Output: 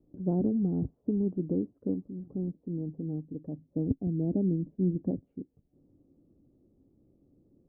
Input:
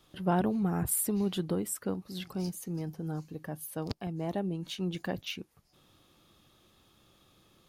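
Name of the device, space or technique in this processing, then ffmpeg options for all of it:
under water: -filter_complex "[0:a]lowpass=frequency=500:width=0.5412,lowpass=frequency=500:width=1.3066,equalizer=frequency=270:width_type=o:width=0.32:gain=10.5,asettb=1/sr,asplit=3[link_01][link_02][link_03];[link_01]atrim=end=3.584[link_04];[link_02]atrim=start=3.58:end=5.11,asetpts=PTS-STARTPTS,afade=type=in:duration=0.004:curve=qsin,afade=type=out:start_time=1.526:duration=0.004:curve=qsin,tiltshelf=frequency=690:gain=6.5[link_05];[link_03]atrim=start=5.106[link_06];[link_04][link_05]acrossfade=duration=0.004:curve1=hsin:curve2=qsin[link_07];[link_07][link_06]acrossfade=duration=0.004:curve1=qsin:curve2=hsin"

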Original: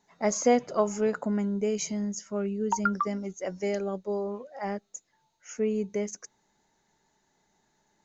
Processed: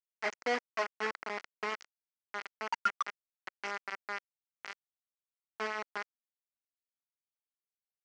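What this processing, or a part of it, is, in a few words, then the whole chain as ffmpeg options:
hand-held game console: -af "acrusher=bits=3:mix=0:aa=0.000001,highpass=430,equalizer=frequency=550:width_type=q:width=4:gain=-5,equalizer=frequency=1400:width_type=q:width=4:gain=5,equalizer=frequency=2000:width_type=q:width=4:gain=7,equalizer=frequency=3700:width_type=q:width=4:gain=-9,lowpass=frequency=5200:width=0.5412,lowpass=frequency=5200:width=1.3066,volume=-8.5dB"

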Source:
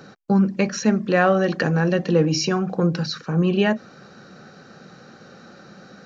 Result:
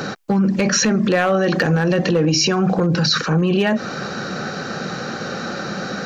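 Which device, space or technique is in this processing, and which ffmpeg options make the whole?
loud club master: -af "acompressor=threshold=-23dB:ratio=2,asoftclip=type=hard:threshold=-15.5dB,alimiter=level_in=27dB:limit=-1dB:release=50:level=0:latency=1,lowshelf=frequency=390:gain=-3.5,volume=-7dB"

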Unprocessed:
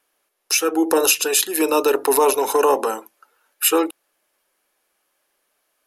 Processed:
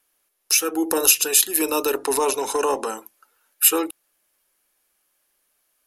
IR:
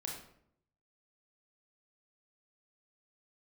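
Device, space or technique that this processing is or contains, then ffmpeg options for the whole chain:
smiley-face EQ: -filter_complex "[0:a]lowshelf=frequency=170:gain=8.5,equalizer=frequency=530:width_type=o:width=2.3:gain=-4,highshelf=frequency=6400:gain=8,asettb=1/sr,asplit=3[link_01][link_02][link_03];[link_01]atrim=end=1.984[link_04];[link_02]atrim=start=1.98:end=2.97,asetpts=PTS-STARTPTS,afade=type=in:duration=0.004:curve=qsin,afade=type=out:start_time=0.986:duration=0.004:curve=qsin,lowpass=frequency=9500:width=0.5412,lowpass=frequency=9500:width=1.3066[link_05];[link_03]atrim=start=2.966[link_06];[link_04][link_05]acrossfade=duration=0.004:curve1=hsin:curve2=qsin[link_07];[link_07][link_06]acrossfade=duration=0.004:curve1=qsin:curve2=hsin,volume=-3dB"

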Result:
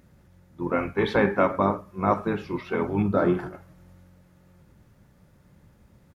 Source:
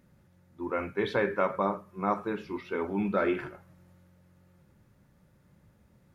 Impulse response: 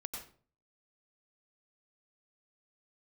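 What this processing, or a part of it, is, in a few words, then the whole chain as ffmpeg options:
octave pedal: -filter_complex "[0:a]asplit=2[link_01][link_02];[link_02]asetrate=22050,aresample=44100,atempo=2,volume=-6dB[link_03];[link_01][link_03]amix=inputs=2:normalize=0,asettb=1/sr,asplit=3[link_04][link_05][link_06];[link_04]atrim=end=3.024[link_07];[link_05]atrim=start=3.02:end=3.53,asetpts=PTS-STARTPTS,afade=type=in:duration=0.004:curve=qsin,afade=type=out:start_time=0.506:duration=0.004:curve=qsin,equalizer=frequency=2400:width_type=o:width=0.88:gain=-13.5[link_08];[link_06]atrim=start=3.526[link_09];[link_07][link_08]acrossfade=duration=0.004:curve1=hsin:curve2=qsin[link_10];[link_10][link_09]acrossfade=duration=0.004:curve1=qsin:curve2=hsin,volume=5dB"

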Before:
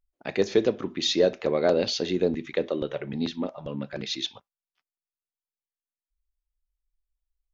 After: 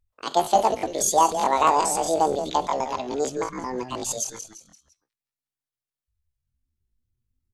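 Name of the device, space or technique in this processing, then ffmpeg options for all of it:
chipmunk voice: -filter_complex "[0:a]asplit=5[link_01][link_02][link_03][link_04][link_05];[link_02]adelay=172,afreqshift=-72,volume=-9.5dB[link_06];[link_03]adelay=344,afreqshift=-144,volume=-17.7dB[link_07];[link_04]adelay=516,afreqshift=-216,volume=-25.9dB[link_08];[link_05]adelay=688,afreqshift=-288,volume=-34dB[link_09];[link_01][link_06][link_07][link_08][link_09]amix=inputs=5:normalize=0,asetrate=78577,aresample=44100,atempo=0.561231,volume=3dB"

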